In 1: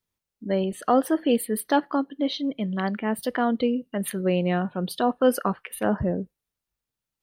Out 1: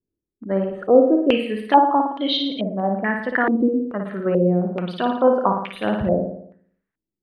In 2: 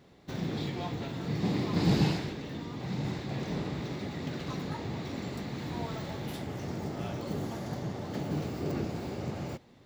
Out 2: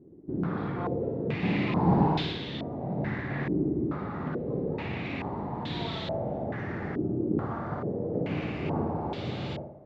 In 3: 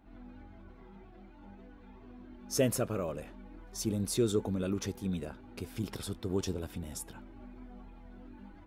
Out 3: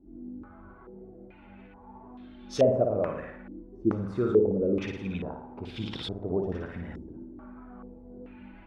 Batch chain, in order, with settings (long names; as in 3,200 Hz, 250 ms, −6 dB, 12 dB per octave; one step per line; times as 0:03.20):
flutter between parallel walls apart 9.7 metres, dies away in 0.7 s
low-pass on a step sequencer 2.3 Hz 340–3,500 Hz